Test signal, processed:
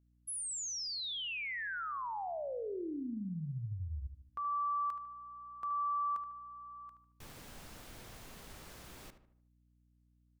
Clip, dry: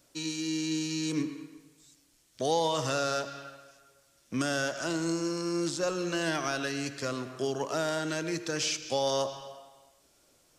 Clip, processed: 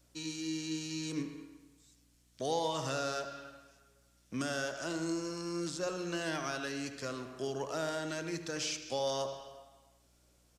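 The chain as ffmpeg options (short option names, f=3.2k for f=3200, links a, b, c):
-filter_complex "[0:a]asplit=2[a][b];[b]adelay=75,lowpass=f=2.3k:p=1,volume=-9.5dB,asplit=2[c][d];[d]adelay=75,lowpass=f=2.3k:p=1,volume=0.47,asplit=2[e][f];[f]adelay=75,lowpass=f=2.3k:p=1,volume=0.47,asplit=2[g][h];[h]adelay=75,lowpass=f=2.3k:p=1,volume=0.47,asplit=2[i][j];[j]adelay=75,lowpass=f=2.3k:p=1,volume=0.47[k];[a][c][e][g][i][k]amix=inputs=6:normalize=0,aeval=exprs='val(0)+0.000708*(sin(2*PI*60*n/s)+sin(2*PI*2*60*n/s)/2+sin(2*PI*3*60*n/s)/3+sin(2*PI*4*60*n/s)/4+sin(2*PI*5*60*n/s)/5)':c=same,volume=-6dB"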